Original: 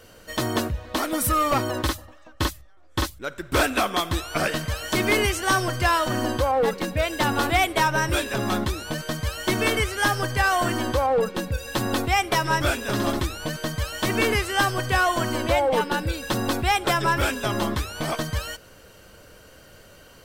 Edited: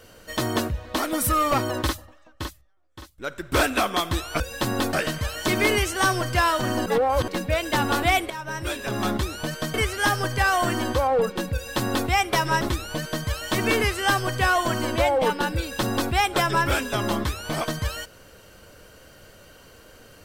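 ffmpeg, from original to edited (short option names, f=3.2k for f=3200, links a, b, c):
-filter_complex "[0:a]asplit=9[a][b][c][d][e][f][g][h][i];[a]atrim=end=3.18,asetpts=PTS-STARTPTS,afade=t=out:st=1.87:d=1.31:c=qua:silence=0.112202[j];[b]atrim=start=3.18:end=4.402,asetpts=PTS-STARTPTS,afade=t=in:d=0.004:c=hsin:silence=0.112202[k];[c]atrim=start=11.538:end=12.072[l];[d]atrim=start=4.398:end=6.332[m];[e]atrim=start=6.328:end=6.752,asetpts=PTS-STARTPTS,areverse[n];[f]atrim=start=6.748:end=7.77,asetpts=PTS-STARTPTS,afade=t=out:st=1.018:d=0.004:c=hsin:silence=0.133352[o];[g]atrim=start=7.77:end=9.212,asetpts=PTS-STARTPTS,afade=t=in:d=0.82:silence=0.133352[p];[h]atrim=start=9.728:end=12.602[q];[i]atrim=start=13.118[r];[j][k]concat=n=2:v=0:a=1[s];[s][l]acrossfade=d=0.004:c1=hsin:c2=hsin[t];[t][m]acrossfade=d=0.004:c1=hsin:c2=hsin[u];[u][n]acrossfade=d=0.004:c1=hsin:c2=hsin[v];[o][p]concat=n=2:v=0:a=1[w];[v][w]acrossfade=d=0.004:c1=hsin:c2=hsin[x];[x][q]acrossfade=d=0.004:c1=hsin:c2=hsin[y];[y][r]acrossfade=d=0.004:c1=hsin:c2=hsin"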